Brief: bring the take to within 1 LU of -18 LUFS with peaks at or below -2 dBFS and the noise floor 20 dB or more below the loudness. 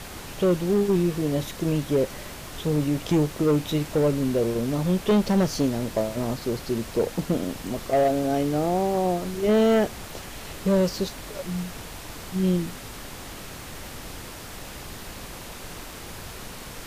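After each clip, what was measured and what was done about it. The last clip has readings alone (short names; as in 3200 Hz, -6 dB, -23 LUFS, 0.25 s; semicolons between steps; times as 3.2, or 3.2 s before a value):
clipped 1.6%; flat tops at -15.5 dBFS; noise floor -39 dBFS; noise floor target -45 dBFS; loudness -24.5 LUFS; peak -15.5 dBFS; loudness target -18.0 LUFS
-> clip repair -15.5 dBFS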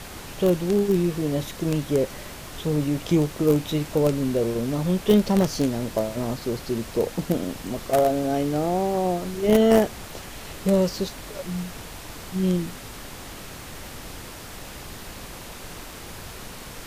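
clipped 0.0%; noise floor -39 dBFS; noise floor target -44 dBFS
-> noise print and reduce 6 dB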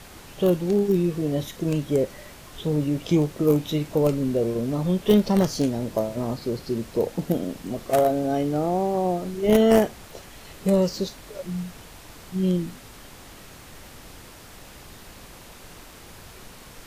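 noise floor -45 dBFS; loudness -24.0 LUFS; peak -6.5 dBFS; loudness target -18.0 LUFS
-> gain +6 dB; limiter -2 dBFS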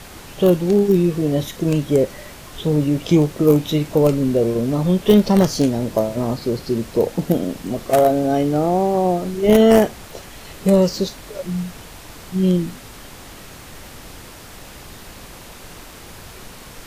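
loudness -18.0 LUFS; peak -2.0 dBFS; noise floor -39 dBFS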